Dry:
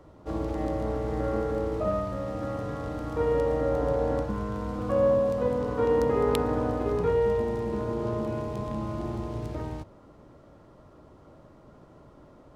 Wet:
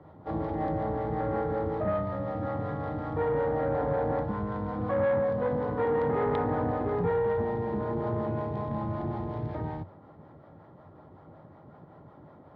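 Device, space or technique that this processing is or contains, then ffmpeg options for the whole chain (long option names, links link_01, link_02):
guitar amplifier with harmonic tremolo: -filter_complex "[0:a]acrossover=split=440[link_01][link_02];[link_01]aeval=exprs='val(0)*(1-0.5/2+0.5/2*cos(2*PI*5.4*n/s))':channel_layout=same[link_03];[link_02]aeval=exprs='val(0)*(1-0.5/2-0.5/2*cos(2*PI*5.4*n/s))':channel_layout=same[link_04];[link_03][link_04]amix=inputs=2:normalize=0,asoftclip=type=tanh:threshold=-24dB,highpass=92,equalizer=frequency=94:width_type=q:width=4:gain=8,equalizer=frequency=160:width_type=q:width=4:gain=7,equalizer=frequency=810:width_type=q:width=4:gain=8,equalizer=frequency=1800:width_type=q:width=4:gain=4,equalizer=frequency=2700:width_type=q:width=4:gain=-9,lowpass=frequency=3500:width=0.5412,lowpass=frequency=3500:width=1.3066,volume=1.5dB"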